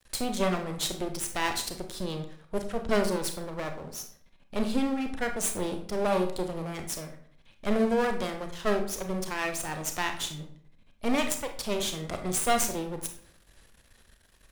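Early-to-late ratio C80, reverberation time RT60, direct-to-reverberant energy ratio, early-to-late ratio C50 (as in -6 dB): 13.0 dB, 0.60 s, 5.0 dB, 8.5 dB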